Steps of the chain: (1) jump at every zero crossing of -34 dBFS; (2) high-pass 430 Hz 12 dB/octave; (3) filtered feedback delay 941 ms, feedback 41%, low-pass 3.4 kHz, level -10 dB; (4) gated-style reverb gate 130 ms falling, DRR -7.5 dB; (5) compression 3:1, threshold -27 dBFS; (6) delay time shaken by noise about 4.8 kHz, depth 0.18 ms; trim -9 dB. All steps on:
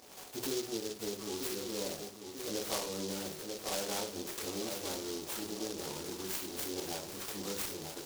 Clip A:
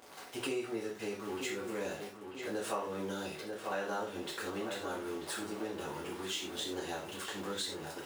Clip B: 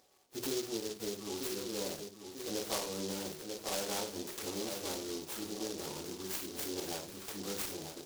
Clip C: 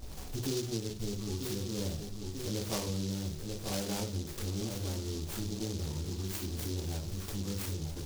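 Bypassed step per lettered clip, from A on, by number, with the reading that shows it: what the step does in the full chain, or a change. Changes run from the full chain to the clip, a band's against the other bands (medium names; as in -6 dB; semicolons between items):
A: 6, 8 kHz band -7.0 dB; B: 1, distortion -17 dB; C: 2, 125 Hz band +17.5 dB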